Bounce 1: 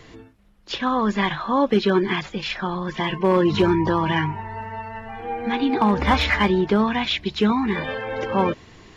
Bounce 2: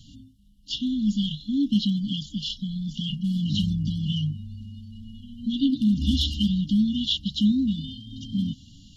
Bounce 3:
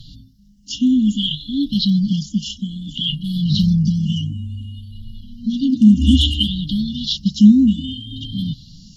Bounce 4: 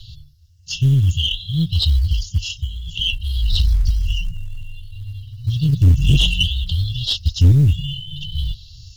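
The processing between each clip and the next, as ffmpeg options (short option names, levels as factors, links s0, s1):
-af "afftfilt=real='re*(1-between(b*sr/4096,300,2800))':imag='im*(1-between(b*sr/4096,300,2800))':win_size=4096:overlap=0.75"
-af "afftfilt=real='re*pow(10,16/40*sin(2*PI*(0.61*log(max(b,1)*sr/1024/100)/log(2)-(0.59)*(pts-256)/sr)))':imag='im*pow(10,16/40*sin(2*PI*(0.61*log(max(b,1)*sr/1024/100)/log(2)-(0.59)*(pts-256)/sr)))':win_size=1024:overlap=0.75,volume=1.78"
-af "afreqshift=-120,aeval=exprs='(tanh(2.51*val(0)+0.25)-tanh(0.25))/2.51':c=same,acrusher=bits=9:mode=log:mix=0:aa=0.000001,volume=1.26"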